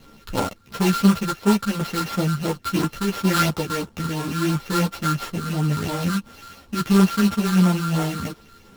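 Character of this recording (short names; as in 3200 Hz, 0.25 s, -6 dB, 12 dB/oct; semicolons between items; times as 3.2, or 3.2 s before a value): a buzz of ramps at a fixed pitch in blocks of 32 samples; phasing stages 6, 2.9 Hz, lowest notch 630–3400 Hz; aliases and images of a low sample rate 8700 Hz, jitter 20%; a shimmering, thickened sound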